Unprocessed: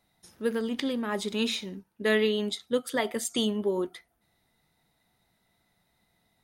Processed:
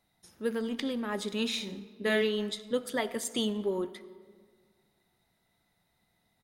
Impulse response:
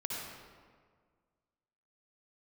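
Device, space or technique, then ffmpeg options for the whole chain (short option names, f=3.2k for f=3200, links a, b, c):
saturated reverb return: -filter_complex "[0:a]asplit=3[a][b][c];[a]afade=t=out:st=1.52:d=0.02[d];[b]asplit=2[e][f];[f]adelay=45,volume=-3.5dB[g];[e][g]amix=inputs=2:normalize=0,afade=t=in:st=1.52:d=0.02,afade=t=out:st=2.21:d=0.02[h];[c]afade=t=in:st=2.21:d=0.02[i];[d][h][i]amix=inputs=3:normalize=0,asplit=2[j][k];[1:a]atrim=start_sample=2205[l];[k][l]afir=irnorm=-1:irlink=0,asoftclip=type=tanh:threshold=-24dB,volume=-14dB[m];[j][m]amix=inputs=2:normalize=0,volume=-4dB"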